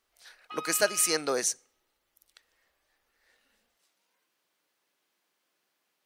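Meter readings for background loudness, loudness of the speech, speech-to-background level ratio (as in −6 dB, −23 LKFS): −40.5 LKFS, −27.5 LKFS, 13.0 dB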